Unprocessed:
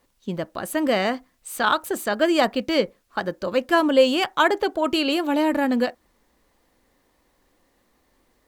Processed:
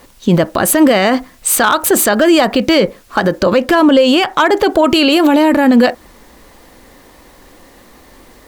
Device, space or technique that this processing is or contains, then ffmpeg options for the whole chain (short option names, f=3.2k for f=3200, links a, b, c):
loud club master: -filter_complex "[0:a]acompressor=threshold=-22dB:ratio=3,asoftclip=type=hard:threshold=-15dB,alimiter=level_in=23.5dB:limit=-1dB:release=50:level=0:latency=1,asettb=1/sr,asplit=3[a][b][c];[a]atrim=end=3.384[d];[b]atrim=start=3.38:end=4.49,asetpts=PTS-STARTPTS,afade=t=in:d=0.004:c=qsin,afade=t=out:st=1.106:d=0.004:c=qsin,highshelf=f=6k:g=-4.5[e];[c]atrim=start=4.486[f];[d][e]acrossfade=d=0.004:c1=hsin:c2=qsin[g];[g][f]acrossfade=d=0.004:c1=qsin:c2=hsin,volume=-1dB"